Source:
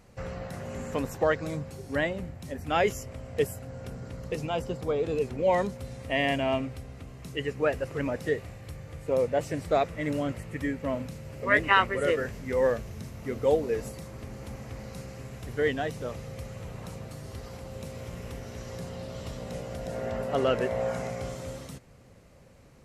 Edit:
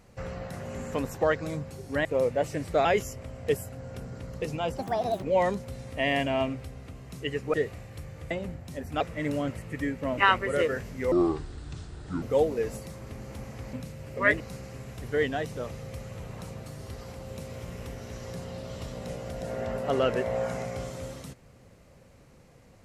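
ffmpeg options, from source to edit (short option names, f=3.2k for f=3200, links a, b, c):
-filter_complex "[0:a]asplit=13[a][b][c][d][e][f][g][h][i][j][k][l][m];[a]atrim=end=2.052[n];[b]atrim=start=9.018:end=9.822[o];[c]atrim=start=2.748:end=4.684[p];[d]atrim=start=4.68:end=5.35,asetpts=PTS-STARTPTS,asetrate=66150,aresample=44100[q];[e]atrim=start=5.346:end=7.662[r];[f]atrim=start=8.248:end=9.022[s];[g]atrim=start=2.048:end=2.752[t];[h]atrim=start=9.818:end=10.992[u];[i]atrim=start=11.658:end=12.604[v];[j]atrim=start=12.6:end=13.34,asetpts=PTS-STARTPTS,asetrate=29547,aresample=44100,atrim=end_sample=48707,asetpts=PTS-STARTPTS[w];[k]atrim=start=13.336:end=14.852[x];[l]atrim=start=10.988:end=11.662[y];[m]atrim=start=14.848[z];[n][o]acrossfade=d=0.004:c1=hsin:c2=hsin[aa];[aa][p]acrossfade=d=0.004:c1=hsin:c2=hsin[ab];[ab][q]acrossfade=d=0.004:c1=hsin:c2=hsin[ac];[ac][r]acrossfade=d=0.004:c1=hsin:c2=hsin[ad];[ad][s]acrossfade=d=0.004:c1=hsin:c2=hsin[ae];[ae][t]acrossfade=d=0.004:c1=hsin:c2=hsin[af];[af][u]acrossfade=d=0.004:c1=hsin:c2=hsin[ag];[ag][v]acrossfade=d=0.004:c1=hsin:c2=hsin[ah];[ah][w]acrossfade=d=0.004:c1=hsin:c2=hsin[ai];[ai][x]acrossfade=d=0.004:c1=hsin:c2=hsin[aj];[aj][y]acrossfade=d=0.004:c1=hsin:c2=hsin[ak];[ak][z]acrossfade=d=0.004:c1=hsin:c2=hsin"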